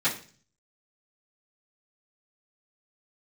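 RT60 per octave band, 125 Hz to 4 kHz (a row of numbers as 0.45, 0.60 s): 0.75, 0.55, 0.45, 0.40, 0.40, 0.50 s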